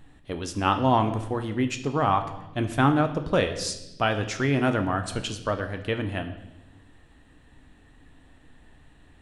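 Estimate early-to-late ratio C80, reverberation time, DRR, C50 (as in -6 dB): 13.0 dB, 0.95 s, 6.5 dB, 11.0 dB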